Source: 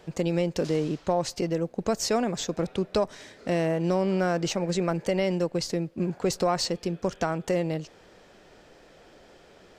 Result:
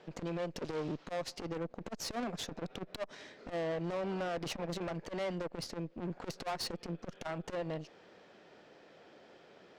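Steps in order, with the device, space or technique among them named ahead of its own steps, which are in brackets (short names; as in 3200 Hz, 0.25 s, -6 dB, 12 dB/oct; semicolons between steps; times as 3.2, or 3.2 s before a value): valve radio (BPF 150–4600 Hz; tube stage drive 32 dB, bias 0.75; core saturation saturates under 200 Hz)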